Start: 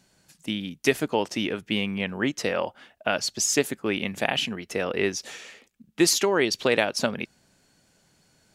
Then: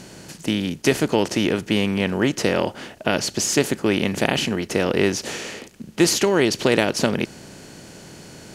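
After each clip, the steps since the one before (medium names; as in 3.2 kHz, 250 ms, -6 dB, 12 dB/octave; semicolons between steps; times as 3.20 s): spectral levelling over time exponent 0.6; bass shelf 200 Hz +12 dB; trim -1 dB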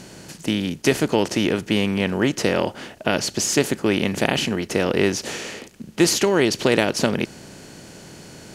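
no audible change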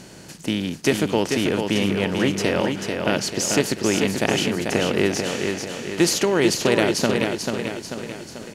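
feedback delay 440 ms, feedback 50%, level -5 dB; trim -1.5 dB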